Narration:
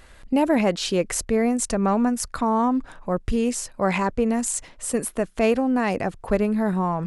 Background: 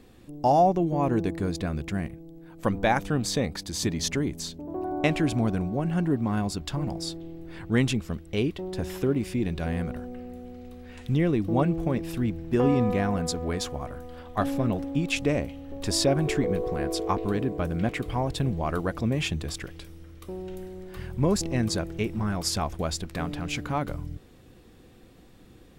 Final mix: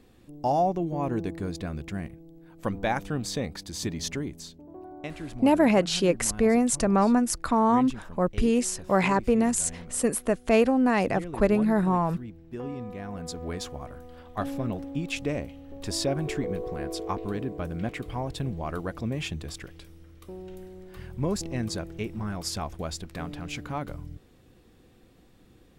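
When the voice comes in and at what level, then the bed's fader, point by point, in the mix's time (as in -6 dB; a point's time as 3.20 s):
5.10 s, -0.5 dB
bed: 4.11 s -4 dB
4.96 s -13.5 dB
12.94 s -13.5 dB
13.45 s -4.5 dB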